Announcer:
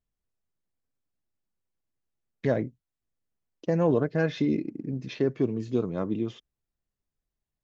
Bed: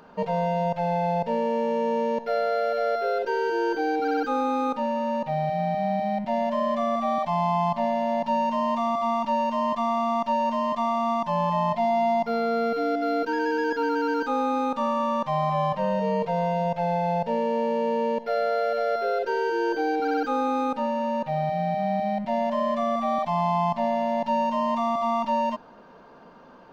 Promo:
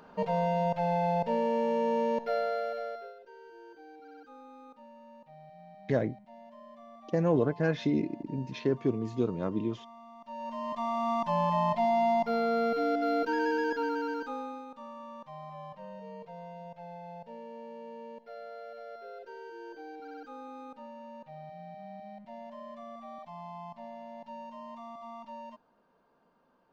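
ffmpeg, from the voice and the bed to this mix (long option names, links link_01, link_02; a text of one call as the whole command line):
ffmpeg -i stem1.wav -i stem2.wav -filter_complex "[0:a]adelay=3450,volume=-2.5dB[link_01];[1:a]volume=19dB,afade=type=out:start_time=2.19:duration=0.96:silence=0.0749894,afade=type=in:start_time=10.2:duration=1.09:silence=0.0749894,afade=type=out:start_time=13.47:duration=1.18:silence=0.149624[link_02];[link_01][link_02]amix=inputs=2:normalize=0" out.wav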